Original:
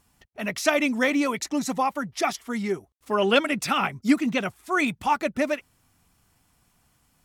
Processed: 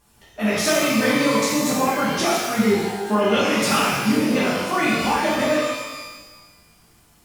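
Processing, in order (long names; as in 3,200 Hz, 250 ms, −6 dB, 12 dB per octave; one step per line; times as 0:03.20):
pitch-shifted copies added −12 semitones −16 dB
downward compressor, threshold −25 dBFS, peak gain reduction 11 dB
reverb with rising layers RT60 1.2 s, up +12 semitones, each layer −8 dB, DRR −8.5 dB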